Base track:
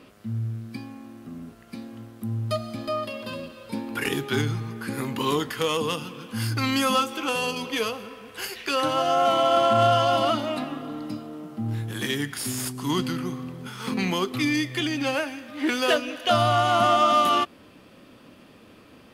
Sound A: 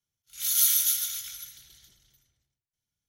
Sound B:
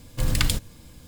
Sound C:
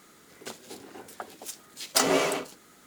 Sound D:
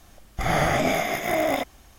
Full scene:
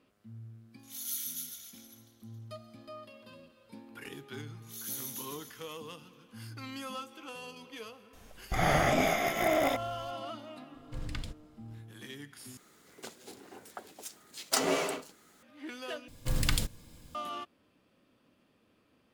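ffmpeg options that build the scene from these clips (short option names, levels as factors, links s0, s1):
-filter_complex "[1:a]asplit=2[s0][s1];[2:a]asplit=2[s2][s3];[0:a]volume=0.119[s4];[s2]aemphasis=mode=reproduction:type=50fm[s5];[s3]equalizer=f=77:t=o:w=0.77:g=-3.5[s6];[s4]asplit=3[s7][s8][s9];[s7]atrim=end=12.574[s10];[3:a]atrim=end=2.86,asetpts=PTS-STARTPTS,volume=0.531[s11];[s8]atrim=start=15.426:end=16.084[s12];[s6]atrim=end=1.07,asetpts=PTS-STARTPTS,volume=0.501[s13];[s9]atrim=start=17.146[s14];[s0]atrim=end=3.08,asetpts=PTS-STARTPTS,volume=0.178,afade=t=in:d=0.004:c=hsin,afade=t=out:st=3.076:d=0.004:c=hsin,adelay=500[s15];[s1]atrim=end=3.08,asetpts=PTS-STARTPTS,volume=0.133,afade=t=in:d=0.004:c=hsin,afade=t=out:st=3.076:d=0.004:c=hsin,adelay=189189S[s16];[4:a]atrim=end=1.98,asetpts=PTS-STARTPTS,volume=0.596,afade=t=in:d=0.004:c=hsin,afade=t=out:st=1.976:d=0.004:c=hsin,adelay=8130[s17];[s5]atrim=end=1.07,asetpts=PTS-STARTPTS,volume=0.158,afade=t=in:d=0.004:c=hsin,afade=t=out:st=1.066:d=0.004:c=hsin,adelay=473634S[s18];[s10][s11]acrossfade=d=0.004:c1=hsin:c2=hsin[s19];[s19][s12]acrossfade=d=0.004:c1=hsin:c2=hsin[s20];[s20][s13]acrossfade=d=0.004:c1=hsin:c2=hsin[s21];[s21][s14]acrossfade=d=0.004:c1=hsin:c2=hsin[s22];[s22][s15][s16][s17][s18]amix=inputs=5:normalize=0"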